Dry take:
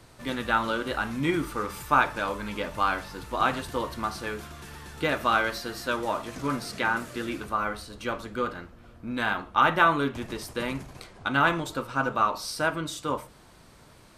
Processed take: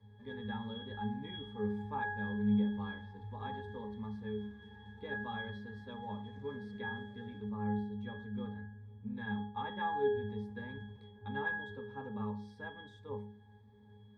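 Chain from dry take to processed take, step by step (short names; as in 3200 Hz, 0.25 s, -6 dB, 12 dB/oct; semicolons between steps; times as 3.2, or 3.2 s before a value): octave resonator G#, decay 0.64 s; gain +11 dB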